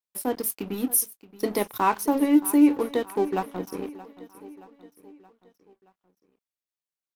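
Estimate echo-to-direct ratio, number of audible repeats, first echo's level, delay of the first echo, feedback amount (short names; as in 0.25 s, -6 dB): -16.5 dB, 4, -18.0 dB, 0.624 s, 53%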